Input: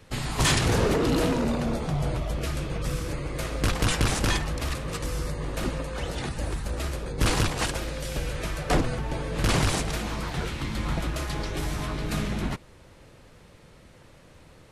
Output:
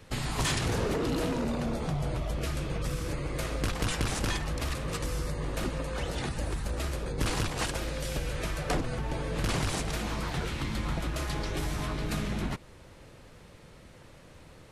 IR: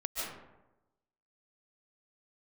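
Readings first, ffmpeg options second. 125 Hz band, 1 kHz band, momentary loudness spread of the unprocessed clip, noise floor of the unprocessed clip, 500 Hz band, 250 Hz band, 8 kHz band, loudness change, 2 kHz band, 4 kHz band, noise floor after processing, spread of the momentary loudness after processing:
-4.0 dB, -4.5 dB, 9 LU, -52 dBFS, -4.5 dB, -4.5 dB, -5.0 dB, -4.5 dB, -4.5 dB, -5.0 dB, -52 dBFS, 5 LU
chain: -af "acompressor=threshold=-29dB:ratio=2.5"

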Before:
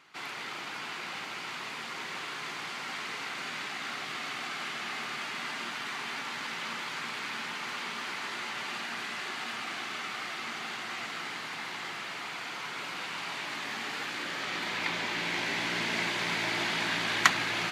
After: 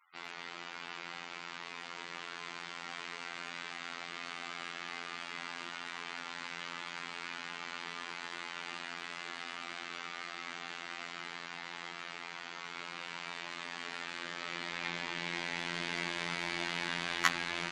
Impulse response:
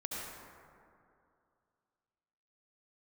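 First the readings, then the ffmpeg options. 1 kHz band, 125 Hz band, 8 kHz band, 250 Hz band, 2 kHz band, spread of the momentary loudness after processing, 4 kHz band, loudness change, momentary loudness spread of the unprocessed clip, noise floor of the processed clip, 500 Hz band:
-6.5 dB, -5.5 dB, -7.0 dB, -6.0 dB, -6.5 dB, 8 LU, -6.5 dB, -6.5 dB, 8 LU, -47 dBFS, -6.0 dB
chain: -af "afftfilt=real='hypot(re,im)*cos(PI*b)':imag='0':win_size=2048:overlap=0.75,afftfilt=real='re*gte(hypot(re,im),0.00178)':imag='im*gte(hypot(re,im),0.00178)':win_size=1024:overlap=0.75,volume=-3dB"

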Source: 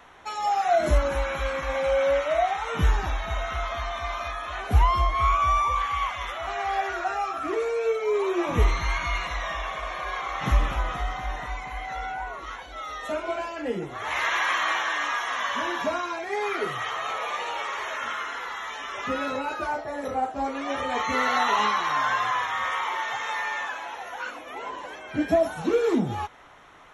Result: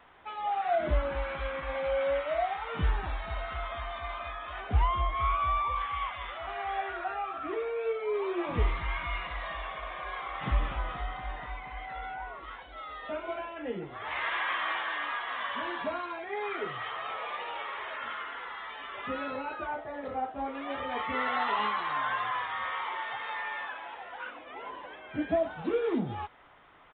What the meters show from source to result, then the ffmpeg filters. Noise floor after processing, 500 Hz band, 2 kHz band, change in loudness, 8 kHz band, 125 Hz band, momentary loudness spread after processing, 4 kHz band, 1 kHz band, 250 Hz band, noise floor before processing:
-46 dBFS, -6.5 dB, -6.5 dB, -6.5 dB, under -35 dB, -6.5 dB, 11 LU, -7.5 dB, -6.5 dB, -6.5 dB, -40 dBFS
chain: -af "aresample=8000,aresample=44100,volume=-6.5dB"

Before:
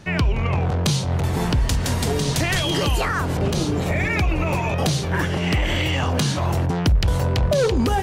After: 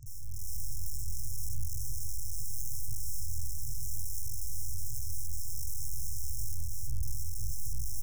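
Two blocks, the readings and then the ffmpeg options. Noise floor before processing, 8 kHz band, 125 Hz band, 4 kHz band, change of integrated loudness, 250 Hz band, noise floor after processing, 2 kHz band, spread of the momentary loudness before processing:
-24 dBFS, -7.5 dB, -20.5 dB, -23.5 dB, -17.5 dB, under -35 dB, -31 dBFS, under -40 dB, 3 LU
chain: -filter_complex "[0:a]afftfilt=real='re*pow(10,17/40*sin(2*PI*(1.1*log(max(b,1)*sr/1024/100)/log(2)-(1.6)*(pts-256)/sr)))':imag='im*pow(10,17/40*sin(2*PI*(1.1*log(max(b,1)*sr/1024/100)/log(2)-(1.6)*(pts-256)/sr)))':win_size=1024:overlap=0.75,tremolo=f=48:d=0.4,acrossover=split=800|3600[a][b][c];[a]acompressor=threshold=-30dB:ratio=4[d];[b]acompressor=threshold=-26dB:ratio=4[e];[c]acompressor=threshold=-43dB:ratio=4[f];[d][e][f]amix=inputs=3:normalize=0,acrossover=split=180|2200[g][h][i];[i]aeval=exprs='abs(val(0))':c=same[j];[g][h][j]amix=inputs=3:normalize=0,aresample=16000,aresample=44100,aeval=exprs='(tanh(100*val(0)+0.55)-tanh(0.55))/100':c=same,aeval=exprs='(mod(84.1*val(0)+1,2)-1)/84.1':c=same,dynaudnorm=f=270:g=3:m=9.5dB,lowshelf=f=110:g=11,afftfilt=real='re*(1-between(b*sr/4096,130,5200))':imag='im*(1-between(b*sr/4096,130,5200))':win_size=4096:overlap=0.75,equalizer=f=3.2k:t=o:w=2.5:g=-4.5"

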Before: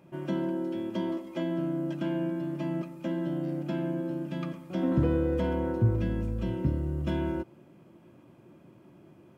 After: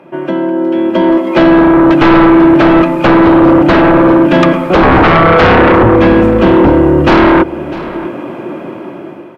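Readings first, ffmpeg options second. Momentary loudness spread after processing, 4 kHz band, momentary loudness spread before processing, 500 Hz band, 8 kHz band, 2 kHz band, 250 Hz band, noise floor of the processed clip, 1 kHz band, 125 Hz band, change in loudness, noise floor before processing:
15 LU, +27.5 dB, 7 LU, +25.5 dB, n/a, +32.5 dB, +23.5 dB, -26 dBFS, +33.0 dB, +15.5 dB, +24.0 dB, -57 dBFS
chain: -filter_complex "[0:a]asplit=2[a][b];[b]acompressor=threshold=-36dB:ratio=6,volume=-0.5dB[c];[a][c]amix=inputs=2:normalize=0,acrossover=split=260 3000:gain=0.126 1 0.141[d][e][f];[d][e][f]amix=inputs=3:normalize=0,dynaudnorm=f=510:g=5:m=16dB,aeval=exprs='0.631*sin(PI/2*3.55*val(0)/0.631)':c=same,aecho=1:1:651:0.141,aresample=32000,aresample=44100,volume=1.5dB"

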